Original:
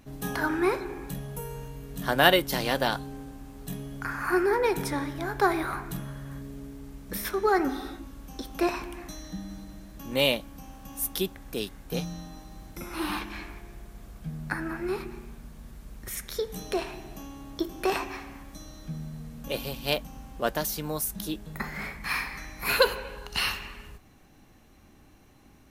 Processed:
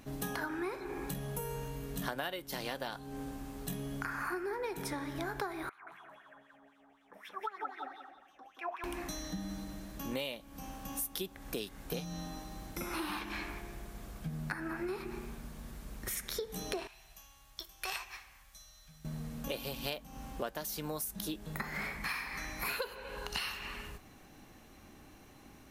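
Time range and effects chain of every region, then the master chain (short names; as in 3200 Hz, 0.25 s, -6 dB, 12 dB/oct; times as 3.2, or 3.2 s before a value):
5.69–8.84 bell 4200 Hz -13 dB 0.79 oct + wah 3.9 Hz 670–3700 Hz, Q 7.3 + feedback echo 0.177 s, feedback 30%, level -3 dB
16.87–19.05 passive tone stack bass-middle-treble 10-0-10 + upward expander, over -49 dBFS
whole clip: low shelf 180 Hz -5.5 dB; compressor 12:1, threshold -37 dBFS; gain +2.5 dB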